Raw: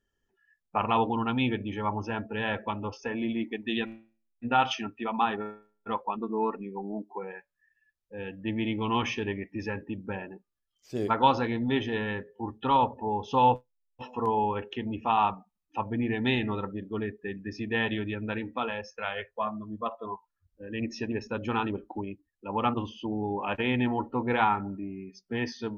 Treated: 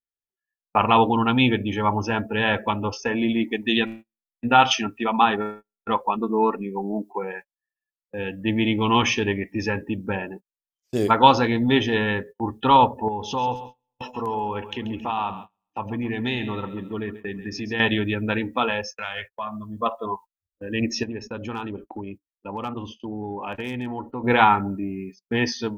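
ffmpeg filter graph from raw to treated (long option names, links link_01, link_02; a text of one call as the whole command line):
ffmpeg -i in.wav -filter_complex "[0:a]asettb=1/sr,asplit=3[link_01][link_02][link_03];[link_01]atrim=end=13.084[link_04];[link_02]atrim=start=13.08:end=17.8,asetpts=PTS-STARTPTS,afade=type=in:duration=0.004:curve=qsin,afade=type=out:start_time=4.716:duration=0.004:curve=qsin,acompressor=threshold=-38dB:ratio=2:attack=3.2:release=140:knee=1:detection=peak,aecho=1:1:136|272|408|544:0.211|0.0888|0.0373|0.0157,atrim=end_sample=208152[link_05];[link_03]atrim=start=17.796[link_06];[link_04][link_05]acrossfade=duration=0.004:curve1=hsin:curve2=qsin[link_07];[link_07][link_06]acrossfade=duration=0.004:curve1=qsin:curve2=hsin,asettb=1/sr,asplit=3[link_08][link_09][link_10];[link_08]atrim=end=18.954[link_11];[link_09]atrim=start=18.95:end=19.76,asetpts=PTS-STARTPTS,afade=type=in:duration=0.004:curve=qsin,afade=type=out:start_time=0.806:duration=0.004:curve=qsin,equalizer=frequency=370:width_type=o:width=1.3:gain=-11,acompressor=threshold=-37dB:ratio=2.5:attack=3.2:release=140:knee=1:detection=peak[link_12];[link_10]atrim=start=19.756[link_13];[link_11][link_12]acrossfade=duration=0.004:curve1=hsin:curve2=qsin[link_14];[link_14][link_13]acrossfade=duration=0.004:curve1=qsin:curve2=hsin,asettb=1/sr,asplit=3[link_15][link_16][link_17];[link_15]atrim=end=21.034[link_18];[link_16]atrim=start=21.03:end=24.24,asetpts=PTS-STARTPTS,afade=type=in:duration=0.004:curve=qsin,afade=type=out:start_time=3.206:duration=0.004:curve=qsin,highshelf=frequency=2200:gain=-5,acompressor=threshold=-40dB:ratio=2.5:attack=3.2:release=140:knee=1:detection=peak,asoftclip=type=hard:threshold=-29.5dB[link_19];[link_17]atrim=start=24.236[link_20];[link_18][link_19]acrossfade=duration=0.004:curve1=hsin:curve2=qsin[link_21];[link_21][link_20]acrossfade=duration=0.004:curve1=qsin:curve2=hsin,agate=range=-31dB:threshold=-46dB:ratio=16:detection=peak,highshelf=frequency=5500:gain=11.5,dynaudnorm=framelen=140:gausssize=5:maxgain=4dB,volume=4dB" out.wav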